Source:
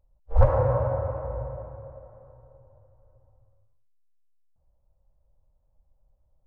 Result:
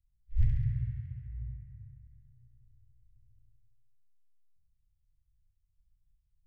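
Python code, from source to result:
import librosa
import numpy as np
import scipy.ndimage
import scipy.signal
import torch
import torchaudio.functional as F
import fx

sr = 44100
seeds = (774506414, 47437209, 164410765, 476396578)

p1 = scipy.signal.sosfilt(scipy.signal.cheby1(5, 1.0, [170.0, 1900.0], 'bandstop', fs=sr, output='sos'), x)
p2 = fx.band_shelf(p1, sr, hz=640.0, db=9.5, octaves=1.3)
p3 = p2 + fx.room_flutter(p2, sr, wall_m=11.6, rt60_s=0.97, dry=0)
y = F.gain(torch.from_numpy(p3), -8.0).numpy()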